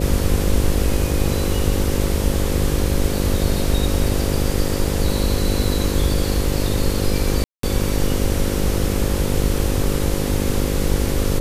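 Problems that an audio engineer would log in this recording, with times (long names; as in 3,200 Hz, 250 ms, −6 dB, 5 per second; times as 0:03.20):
mains buzz 50 Hz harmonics 11 −23 dBFS
0:07.44–0:07.63: drop-out 193 ms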